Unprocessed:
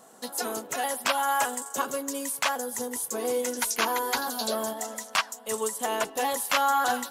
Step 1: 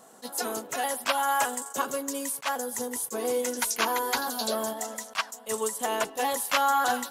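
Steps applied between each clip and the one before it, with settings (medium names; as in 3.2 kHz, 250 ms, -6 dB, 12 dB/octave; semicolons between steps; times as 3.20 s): attacks held to a fixed rise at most 410 dB/s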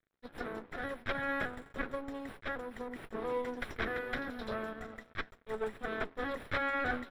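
comb filter that takes the minimum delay 0.54 ms; crossover distortion -48.5 dBFS; distance through air 450 m; trim -2.5 dB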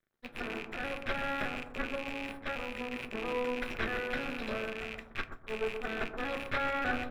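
rattle on loud lows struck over -55 dBFS, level -28 dBFS; bucket-brigade echo 125 ms, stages 1024, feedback 33%, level -7 dB; on a send at -8.5 dB: reverberation RT60 0.25 s, pre-delay 3 ms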